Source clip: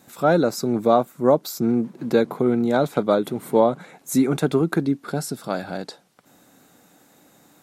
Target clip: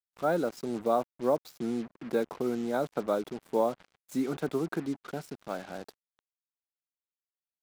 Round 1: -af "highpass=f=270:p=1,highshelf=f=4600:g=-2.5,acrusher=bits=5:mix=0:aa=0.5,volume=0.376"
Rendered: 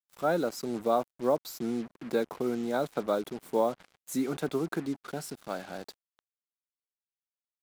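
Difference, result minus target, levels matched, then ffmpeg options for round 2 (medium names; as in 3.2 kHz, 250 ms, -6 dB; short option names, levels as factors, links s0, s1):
8 kHz band +6.0 dB
-af "highpass=f=270:p=1,highshelf=f=4600:g=-14,acrusher=bits=5:mix=0:aa=0.5,volume=0.376"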